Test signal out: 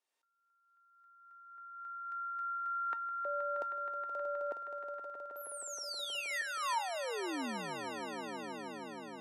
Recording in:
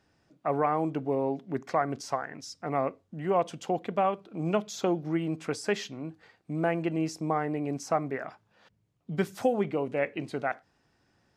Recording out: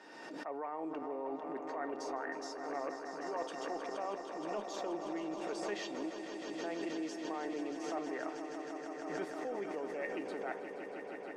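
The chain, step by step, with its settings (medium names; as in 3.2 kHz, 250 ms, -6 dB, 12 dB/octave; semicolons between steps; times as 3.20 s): high-pass 290 Hz 24 dB/octave; reverse; compression 10:1, threshold -37 dBFS; reverse; low-pass 9.8 kHz 12 dB/octave; treble shelf 2.9 kHz -7.5 dB; feedback comb 910 Hz, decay 0.16 s, harmonics all, mix 80%; on a send: echo with a slow build-up 158 ms, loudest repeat 5, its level -11 dB; on the sum: swell ahead of each attack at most 36 dB/s; trim +12 dB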